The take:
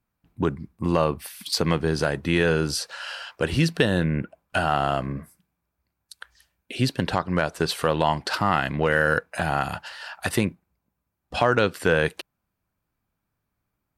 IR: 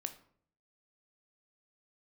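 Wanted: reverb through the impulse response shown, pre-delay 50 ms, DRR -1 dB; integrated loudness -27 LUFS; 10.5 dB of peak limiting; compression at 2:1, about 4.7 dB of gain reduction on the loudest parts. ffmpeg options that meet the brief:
-filter_complex "[0:a]acompressor=threshold=0.0631:ratio=2,alimiter=limit=0.1:level=0:latency=1,asplit=2[s0][s1];[1:a]atrim=start_sample=2205,adelay=50[s2];[s1][s2]afir=irnorm=-1:irlink=0,volume=1.33[s3];[s0][s3]amix=inputs=2:normalize=0,volume=1.33"

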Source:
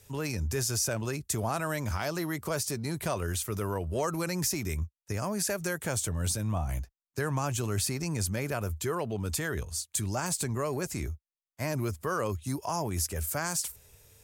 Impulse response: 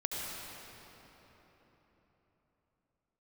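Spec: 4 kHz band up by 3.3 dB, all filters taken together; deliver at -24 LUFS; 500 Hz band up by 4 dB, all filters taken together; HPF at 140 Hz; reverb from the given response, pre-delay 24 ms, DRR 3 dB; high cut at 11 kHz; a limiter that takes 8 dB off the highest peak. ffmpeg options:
-filter_complex "[0:a]highpass=140,lowpass=11000,equalizer=f=500:t=o:g=5,equalizer=f=4000:t=o:g=4.5,alimiter=limit=0.0668:level=0:latency=1,asplit=2[s0][s1];[1:a]atrim=start_sample=2205,adelay=24[s2];[s1][s2]afir=irnorm=-1:irlink=0,volume=0.422[s3];[s0][s3]amix=inputs=2:normalize=0,volume=2.51"

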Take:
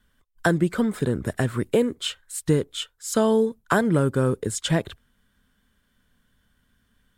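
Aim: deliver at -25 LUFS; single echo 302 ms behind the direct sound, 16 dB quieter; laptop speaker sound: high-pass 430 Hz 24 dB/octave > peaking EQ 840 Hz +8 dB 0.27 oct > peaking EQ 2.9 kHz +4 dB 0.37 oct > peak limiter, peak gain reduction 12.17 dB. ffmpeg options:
-af "highpass=f=430:w=0.5412,highpass=f=430:w=1.3066,equalizer=f=840:t=o:w=0.27:g=8,equalizer=f=2900:t=o:w=0.37:g=4,aecho=1:1:302:0.158,volume=1.68,alimiter=limit=0.251:level=0:latency=1"

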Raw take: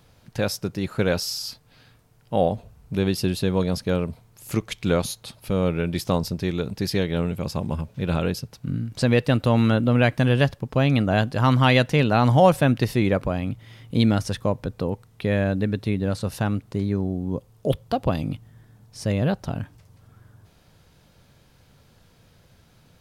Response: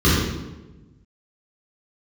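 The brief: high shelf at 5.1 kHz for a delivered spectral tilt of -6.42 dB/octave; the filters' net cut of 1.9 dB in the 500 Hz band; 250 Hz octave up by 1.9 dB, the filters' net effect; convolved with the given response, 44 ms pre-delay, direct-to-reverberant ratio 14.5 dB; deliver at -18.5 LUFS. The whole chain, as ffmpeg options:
-filter_complex "[0:a]equalizer=f=250:t=o:g=3,equalizer=f=500:t=o:g=-3,highshelf=f=5100:g=4,asplit=2[s0][s1];[1:a]atrim=start_sample=2205,adelay=44[s2];[s1][s2]afir=irnorm=-1:irlink=0,volume=0.015[s3];[s0][s3]amix=inputs=2:normalize=0,volume=1.41"

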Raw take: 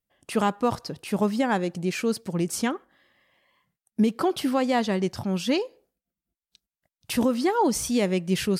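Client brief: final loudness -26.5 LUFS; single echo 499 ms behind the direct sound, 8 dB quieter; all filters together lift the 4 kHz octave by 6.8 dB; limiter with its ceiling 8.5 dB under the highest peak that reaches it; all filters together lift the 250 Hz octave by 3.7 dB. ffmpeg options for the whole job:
-af "equalizer=f=250:t=o:g=4.5,equalizer=f=4000:t=o:g=9,alimiter=limit=0.133:level=0:latency=1,aecho=1:1:499:0.398"

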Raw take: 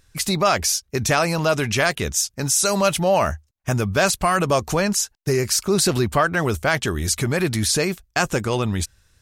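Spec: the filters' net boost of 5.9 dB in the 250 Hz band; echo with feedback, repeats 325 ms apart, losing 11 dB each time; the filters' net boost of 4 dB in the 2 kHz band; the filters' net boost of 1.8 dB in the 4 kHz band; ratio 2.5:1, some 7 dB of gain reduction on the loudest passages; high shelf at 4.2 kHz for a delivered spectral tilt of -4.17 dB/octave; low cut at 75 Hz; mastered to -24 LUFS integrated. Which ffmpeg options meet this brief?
-af "highpass=75,equalizer=f=250:t=o:g=8.5,equalizer=f=2000:t=o:g=5.5,equalizer=f=4000:t=o:g=6.5,highshelf=f=4200:g=-8.5,acompressor=threshold=0.0794:ratio=2.5,aecho=1:1:325|650|975:0.282|0.0789|0.0221,volume=0.944"

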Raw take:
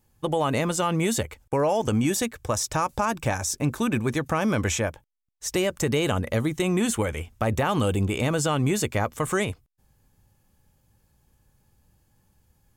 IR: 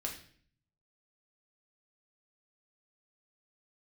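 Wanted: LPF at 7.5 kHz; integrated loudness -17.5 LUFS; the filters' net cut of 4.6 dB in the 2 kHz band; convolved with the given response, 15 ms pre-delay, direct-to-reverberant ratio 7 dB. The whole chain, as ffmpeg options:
-filter_complex "[0:a]lowpass=7500,equalizer=f=2000:t=o:g=-6,asplit=2[s0][s1];[1:a]atrim=start_sample=2205,adelay=15[s2];[s1][s2]afir=irnorm=-1:irlink=0,volume=0.422[s3];[s0][s3]amix=inputs=2:normalize=0,volume=2.51"

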